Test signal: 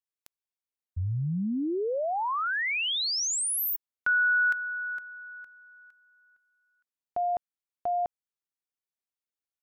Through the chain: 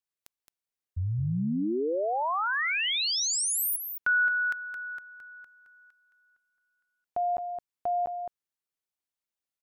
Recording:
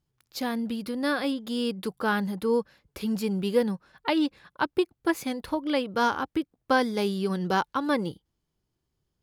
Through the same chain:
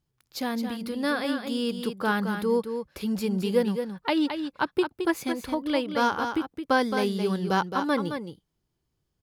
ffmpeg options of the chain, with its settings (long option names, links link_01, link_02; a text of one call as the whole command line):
ffmpeg -i in.wav -af "aecho=1:1:218:0.422" out.wav